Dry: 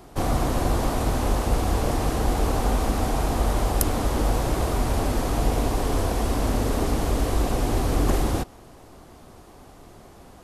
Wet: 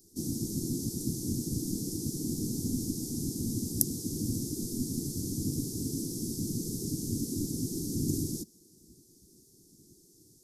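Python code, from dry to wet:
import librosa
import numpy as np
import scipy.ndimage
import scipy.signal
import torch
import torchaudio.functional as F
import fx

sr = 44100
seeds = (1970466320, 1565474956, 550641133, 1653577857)

y = scipy.signal.sosfilt(scipy.signal.ellip(3, 1.0, 40, [290.0, 5400.0], 'bandstop', fs=sr, output='sos'), x)
y = fx.spec_gate(y, sr, threshold_db=-10, keep='weak')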